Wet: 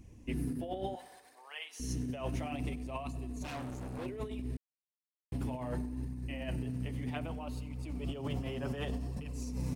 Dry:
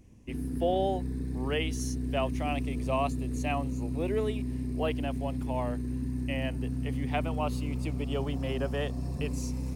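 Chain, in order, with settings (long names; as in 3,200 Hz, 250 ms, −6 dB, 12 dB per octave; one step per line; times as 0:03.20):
feedback delay network reverb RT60 1.7 s, high-frequency decay 0.9×, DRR 17.5 dB
brickwall limiter −23.5 dBFS, peak gain reduction 6.5 dB
0:03.42–0:04.06: hard clipping −39.5 dBFS, distortion −15 dB
flanger 0.65 Hz, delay 0.7 ms, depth 9.9 ms, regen −25%
compressor whose output falls as the input rises −38 dBFS, ratio −0.5
0:00.95–0:01.80: high-pass filter 710 Hz 24 dB per octave
repeating echo 100 ms, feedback 54%, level −22 dB
0:04.57–0:05.32: silence
level +1.5 dB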